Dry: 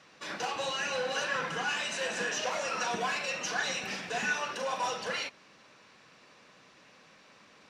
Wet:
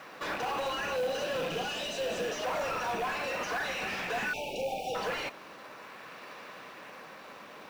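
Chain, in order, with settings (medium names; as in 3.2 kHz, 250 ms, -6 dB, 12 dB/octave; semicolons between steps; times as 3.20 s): rattle on loud lows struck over -46 dBFS, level -25 dBFS; 0.96–2.43 s: high-order bell 1.4 kHz -14.5 dB; peak limiter -28.5 dBFS, peak gain reduction 10 dB; in parallel at -6.5 dB: decimation with a swept rate 10×, swing 160% 0.43 Hz; on the sum: overdrive pedal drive 18 dB, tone 1.3 kHz, clips at -25 dBFS; companded quantiser 6-bit; 4.33–4.95 s: brick-wall FIR band-stop 880–2200 Hz; trim +1.5 dB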